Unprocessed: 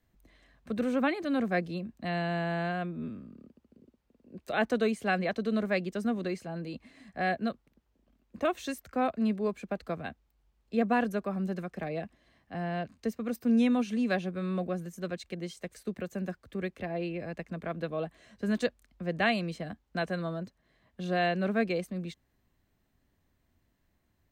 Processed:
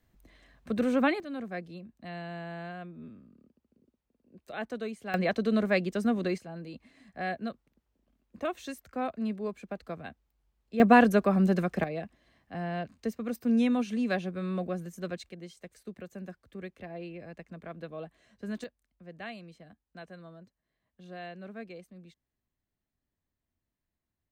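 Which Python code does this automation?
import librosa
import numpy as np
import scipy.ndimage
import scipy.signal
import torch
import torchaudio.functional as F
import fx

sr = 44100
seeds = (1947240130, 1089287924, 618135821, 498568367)

y = fx.gain(x, sr, db=fx.steps((0.0, 2.5), (1.2, -8.5), (5.14, 3.0), (6.38, -4.0), (10.8, 8.5), (11.84, -0.5), (15.29, -7.0), (18.64, -14.5)))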